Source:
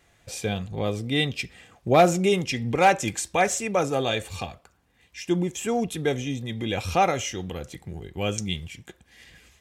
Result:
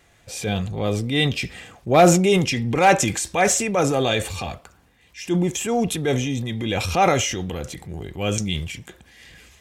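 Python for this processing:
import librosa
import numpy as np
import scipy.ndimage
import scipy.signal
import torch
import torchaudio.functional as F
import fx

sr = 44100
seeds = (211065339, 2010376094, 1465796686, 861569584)

y = fx.transient(x, sr, attack_db=-5, sustain_db=6)
y = y * librosa.db_to_amplitude(4.5)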